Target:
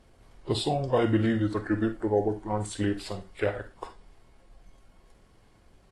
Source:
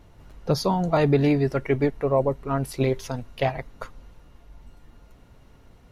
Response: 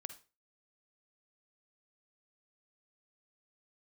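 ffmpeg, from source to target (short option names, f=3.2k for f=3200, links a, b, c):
-filter_complex "[0:a]asetrate=34006,aresample=44100,atempo=1.29684,bass=f=250:g=-5,treble=f=4k:g=2[a];[1:a]atrim=start_sample=2205,asetrate=52920,aresample=44100[b];[a][b]afir=irnorm=-1:irlink=0,volume=3.5dB" -ar 44100 -c:a libvorbis -b:a 32k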